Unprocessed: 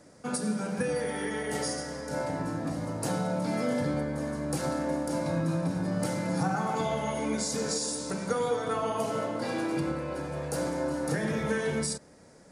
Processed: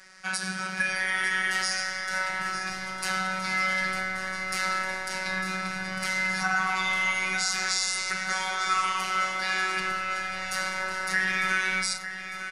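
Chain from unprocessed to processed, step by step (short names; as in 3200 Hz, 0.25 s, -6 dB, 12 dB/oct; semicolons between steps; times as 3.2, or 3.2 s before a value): band shelf 2700 Hz +8 dB 2.5 oct; robotiser 188 Hz; graphic EQ 125/250/500/2000 Hz -7/-12/-11/+7 dB; in parallel at -2 dB: limiter -19 dBFS, peak gain reduction 9.5 dB; on the sum: de-hum 146.8 Hz, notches 30; on a send: feedback echo 0.902 s, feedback 52%, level -10.5 dB; on the sum: gain -1 dB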